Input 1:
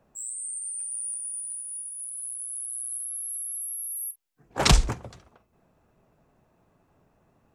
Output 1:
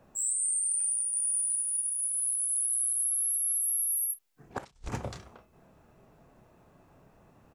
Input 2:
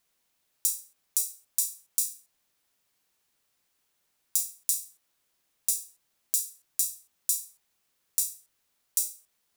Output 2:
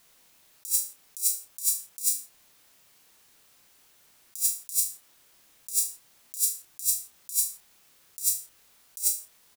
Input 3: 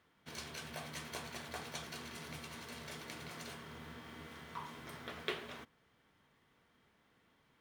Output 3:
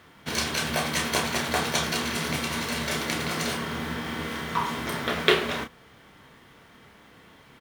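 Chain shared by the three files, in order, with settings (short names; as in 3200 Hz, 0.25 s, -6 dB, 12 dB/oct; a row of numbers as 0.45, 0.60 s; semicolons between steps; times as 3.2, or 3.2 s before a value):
doubler 30 ms -6.5 dB; negative-ratio compressor -33 dBFS, ratio -0.5; match loudness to -27 LUFS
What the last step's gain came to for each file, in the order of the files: +1.5, +7.5, +18.5 dB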